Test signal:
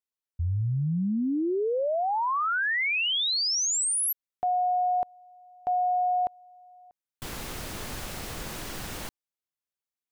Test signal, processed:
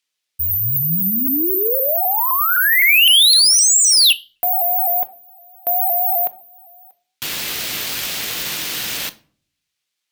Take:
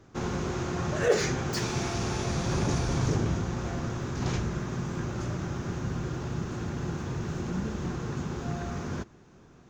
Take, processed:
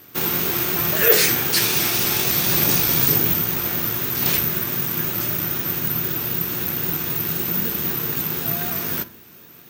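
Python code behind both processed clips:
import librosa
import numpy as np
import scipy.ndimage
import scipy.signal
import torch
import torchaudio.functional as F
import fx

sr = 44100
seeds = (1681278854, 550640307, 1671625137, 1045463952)

y = (np.kron(x[::3], np.eye(3)[0]) * 3)[:len(x)]
y = fx.weighting(y, sr, curve='D')
y = 10.0 ** (-6.0 / 20.0) * np.tanh(y / 10.0 ** (-6.0 / 20.0))
y = fx.room_shoebox(y, sr, seeds[0], volume_m3=480.0, walls='furnished', distance_m=0.48)
y = fx.vibrato_shape(y, sr, shape='saw_up', rate_hz=3.9, depth_cents=100.0)
y = y * 10.0 ** (4.5 / 20.0)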